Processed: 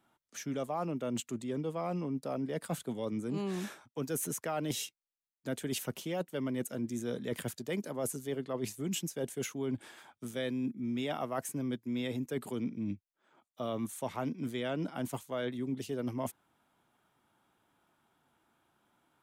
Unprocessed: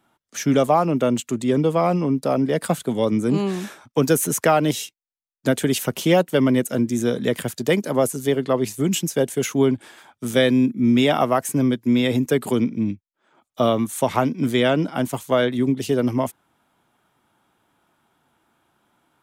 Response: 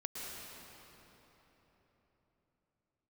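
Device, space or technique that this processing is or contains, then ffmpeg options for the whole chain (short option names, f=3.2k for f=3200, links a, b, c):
compression on the reversed sound: -af "areverse,acompressor=threshold=-25dB:ratio=6,areverse,volume=-7.5dB"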